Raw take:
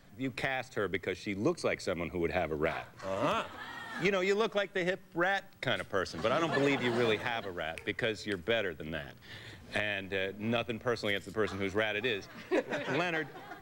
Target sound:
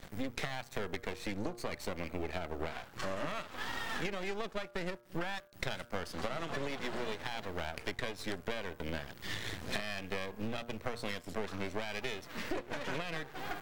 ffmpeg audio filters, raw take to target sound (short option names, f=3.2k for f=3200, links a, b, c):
-af "aeval=exprs='max(val(0),0)':c=same,acompressor=threshold=-47dB:ratio=12,bandreject=f=118.1:t=h:w=4,bandreject=f=236.2:t=h:w=4,bandreject=f=354.3:t=h:w=4,bandreject=f=472.4:t=h:w=4,bandreject=f=590.5:t=h:w=4,bandreject=f=708.6:t=h:w=4,bandreject=f=826.7:t=h:w=4,bandreject=f=944.8:t=h:w=4,bandreject=f=1.0629k:t=h:w=4,bandreject=f=1.181k:t=h:w=4,bandreject=f=1.2991k:t=h:w=4,bandreject=f=1.4172k:t=h:w=4,bandreject=f=1.5353k:t=h:w=4,bandreject=f=1.6534k:t=h:w=4,volume=14.5dB"